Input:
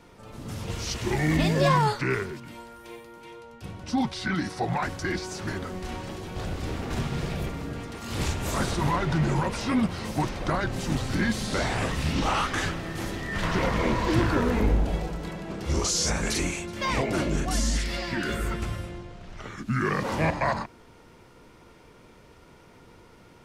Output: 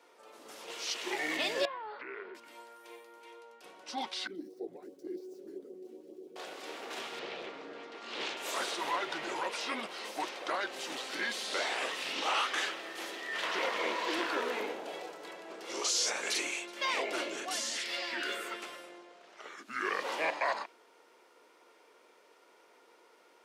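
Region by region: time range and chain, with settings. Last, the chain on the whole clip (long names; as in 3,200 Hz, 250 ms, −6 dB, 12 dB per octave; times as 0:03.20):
0:01.65–0:02.35: Gaussian smoothing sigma 3.1 samples + downward compressor 8 to 1, threshold −30 dBFS + mains-hum notches 50/100/150/200/250/300/350 Hz
0:04.27–0:06.36: running median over 5 samples + drawn EQ curve 150 Hz 0 dB, 400 Hz +5 dB, 930 Hz −27 dB, 1,800 Hz −29 dB, 5,400 Hz −19 dB, 9,900 Hz −12 dB + auto-filter notch saw up 7.5 Hz 380–2,000 Hz
0:07.19–0:08.37: Chebyshev low-pass filter 4,000 Hz + low-shelf EQ 350 Hz +7 dB + highs frequency-modulated by the lows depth 0.41 ms
whole clip: high-pass filter 380 Hz 24 dB per octave; dynamic equaliser 3,100 Hz, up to +7 dB, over −47 dBFS, Q 1.1; level −6.5 dB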